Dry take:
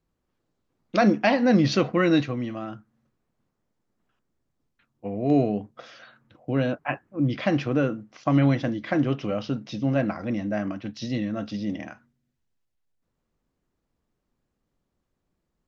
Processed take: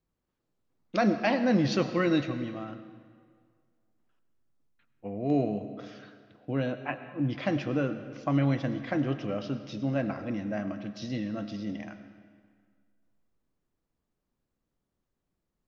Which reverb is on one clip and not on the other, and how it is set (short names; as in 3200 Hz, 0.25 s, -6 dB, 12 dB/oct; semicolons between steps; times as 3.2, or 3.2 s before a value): digital reverb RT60 1.9 s, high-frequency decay 0.8×, pre-delay 55 ms, DRR 10.5 dB; gain -5.5 dB